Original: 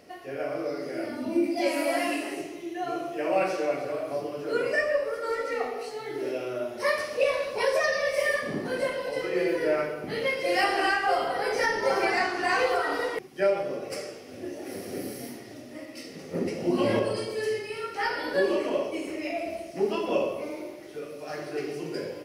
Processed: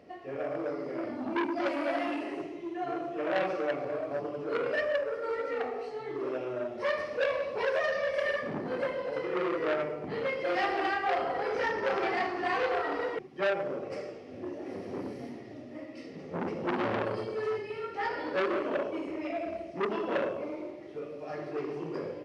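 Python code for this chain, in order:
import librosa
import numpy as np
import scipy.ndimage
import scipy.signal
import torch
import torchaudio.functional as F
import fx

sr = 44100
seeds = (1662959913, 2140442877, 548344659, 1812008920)

y = scipy.signal.sosfilt(scipy.signal.butter(4, 48.0, 'highpass', fs=sr, output='sos'), x)
y = fx.notch(y, sr, hz=1500.0, q=12.0)
y = fx.quant_companded(y, sr, bits=6)
y = fx.spacing_loss(y, sr, db_at_10k=26)
y = fx.transformer_sat(y, sr, knee_hz=1500.0)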